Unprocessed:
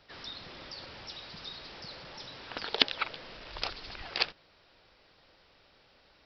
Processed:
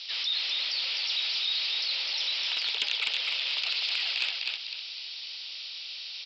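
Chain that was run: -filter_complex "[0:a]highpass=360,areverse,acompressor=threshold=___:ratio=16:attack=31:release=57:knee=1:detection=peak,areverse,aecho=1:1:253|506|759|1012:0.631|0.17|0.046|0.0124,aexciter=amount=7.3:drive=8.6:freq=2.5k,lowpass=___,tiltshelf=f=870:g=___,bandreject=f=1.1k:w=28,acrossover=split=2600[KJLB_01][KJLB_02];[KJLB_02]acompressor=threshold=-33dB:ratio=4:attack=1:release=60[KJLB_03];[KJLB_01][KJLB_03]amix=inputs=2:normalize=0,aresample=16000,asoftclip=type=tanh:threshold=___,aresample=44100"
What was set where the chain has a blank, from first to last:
-47dB, 4k, -9.5, -17dB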